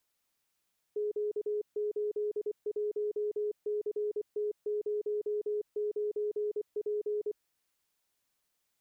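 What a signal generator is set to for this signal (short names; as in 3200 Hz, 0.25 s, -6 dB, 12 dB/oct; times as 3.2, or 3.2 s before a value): Morse "Q81CT09P" 24 wpm 419 Hz -29.5 dBFS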